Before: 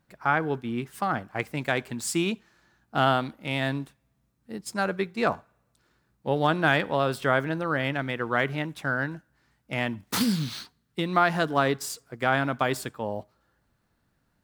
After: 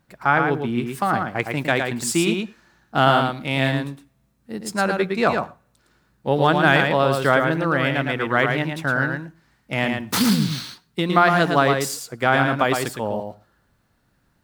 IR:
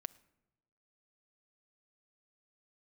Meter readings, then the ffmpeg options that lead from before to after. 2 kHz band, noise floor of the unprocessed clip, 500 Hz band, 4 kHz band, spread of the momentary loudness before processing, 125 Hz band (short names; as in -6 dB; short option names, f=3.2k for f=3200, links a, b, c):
+7.0 dB, -72 dBFS, +6.5 dB, +6.5 dB, 11 LU, +7.0 dB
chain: -filter_complex "[0:a]asplit=2[a][b];[1:a]atrim=start_sample=2205,atrim=end_sample=6174,adelay=111[c];[b][c]afir=irnorm=-1:irlink=0,volume=-1dB[d];[a][d]amix=inputs=2:normalize=0,volume=5.5dB"